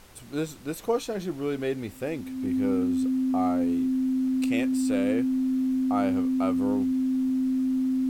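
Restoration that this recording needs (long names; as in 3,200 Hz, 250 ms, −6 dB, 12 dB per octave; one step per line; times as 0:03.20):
notch filter 260 Hz, Q 30
downward expander −31 dBFS, range −21 dB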